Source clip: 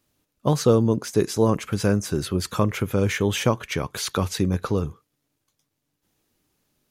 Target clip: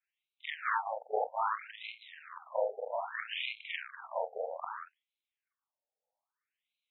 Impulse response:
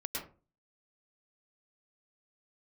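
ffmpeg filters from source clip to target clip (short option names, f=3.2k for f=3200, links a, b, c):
-af "afftfilt=real='re':imag='-im':win_size=4096:overlap=0.75,aeval=exprs='0.282*(cos(1*acos(clip(val(0)/0.282,-1,1)))-cos(1*PI/2))+0.00501*(cos(3*acos(clip(val(0)/0.282,-1,1)))-cos(3*PI/2))+0.112*(cos(6*acos(clip(val(0)/0.282,-1,1)))-cos(6*PI/2))':c=same,afftfilt=real='re*between(b*sr/1024,600*pow(3000/600,0.5+0.5*sin(2*PI*0.62*pts/sr))/1.41,600*pow(3000/600,0.5+0.5*sin(2*PI*0.62*pts/sr))*1.41)':imag='im*between(b*sr/1024,600*pow(3000/600,0.5+0.5*sin(2*PI*0.62*pts/sr))/1.41,600*pow(3000/600,0.5+0.5*sin(2*PI*0.62*pts/sr))*1.41)':win_size=1024:overlap=0.75,volume=-3.5dB"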